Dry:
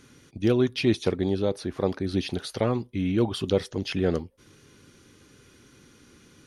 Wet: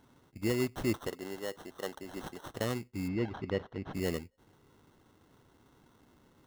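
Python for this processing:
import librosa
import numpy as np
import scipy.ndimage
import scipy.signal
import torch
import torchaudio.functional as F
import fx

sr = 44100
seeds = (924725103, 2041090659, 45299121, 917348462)

y = fx.weighting(x, sr, curve='A', at=(1.07, 2.5))
y = fx.sample_hold(y, sr, seeds[0], rate_hz=2400.0, jitter_pct=0)
y = fx.air_absorb(y, sr, metres=260.0, at=(3.07, 3.93), fade=0.02)
y = y * 10.0 ** (-9.0 / 20.0)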